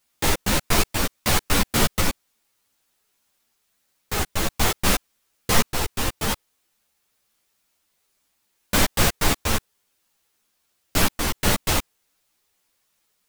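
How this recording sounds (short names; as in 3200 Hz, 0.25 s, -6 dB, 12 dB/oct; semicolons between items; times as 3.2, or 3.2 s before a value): random-step tremolo; a quantiser's noise floor 12-bit, dither triangular; a shimmering, thickened sound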